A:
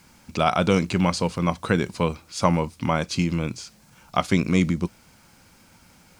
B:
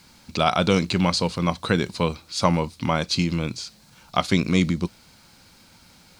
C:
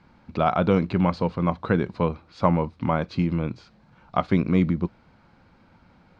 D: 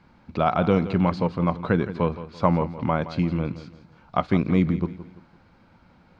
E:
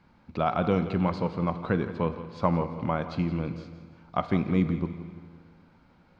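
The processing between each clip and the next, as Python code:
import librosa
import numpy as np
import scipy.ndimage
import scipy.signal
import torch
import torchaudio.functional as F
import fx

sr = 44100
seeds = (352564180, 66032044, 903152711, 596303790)

y1 = fx.peak_eq(x, sr, hz=4100.0, db=9.5, octaves=0.58)
y2 = scipy.signal.sosfilt(scipy.signal.butter(2, 1500.0, 'lowpass', fs=sr, output='sos'), y1)
y3 = fx.echo_feedback(y2, sr, ms=169, feedback_pct=36, wet_db=-14)
y4 = fx.rev_schroeder(y3, sr, rt60_s=2.0, comb_ms=32, drr_db=12.0)
y4 = y4 * 10.0 ** (-4.5 / 20.0)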